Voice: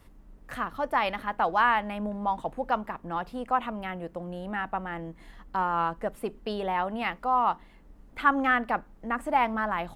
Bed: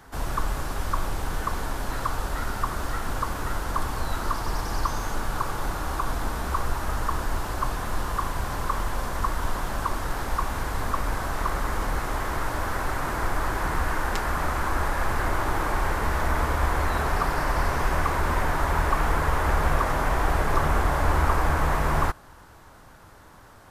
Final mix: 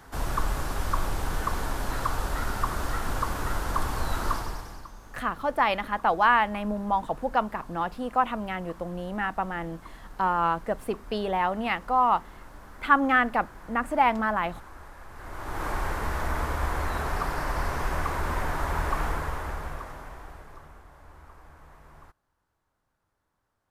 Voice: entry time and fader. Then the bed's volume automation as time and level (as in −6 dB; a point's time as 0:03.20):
4.65 s, +2.5 dB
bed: 0:04.34 −0.5 dB
0:04.92 −20.5 dB
0:15.10 −20.5 dB
0:15.66 −4.5 dB
0:19.03 −4.5 dB
0:20.85 −28.5 dB